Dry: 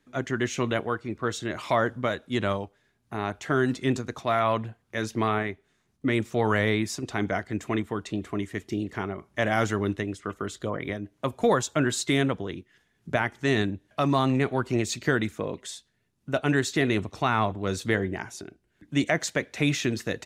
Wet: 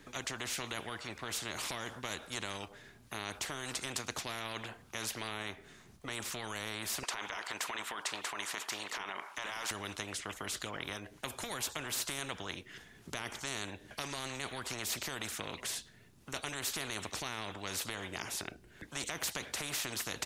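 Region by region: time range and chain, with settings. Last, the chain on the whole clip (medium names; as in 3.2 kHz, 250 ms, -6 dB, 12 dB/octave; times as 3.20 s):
7.03–9.71 s: resonant high-pass 960 Hz, resonance Q 9.4 + peaking EQ 1.6 kHz +13 dB 1.8 oct
whole clip: peak limiter -18.5 dBFS; spectrum-flattening compressor 4:1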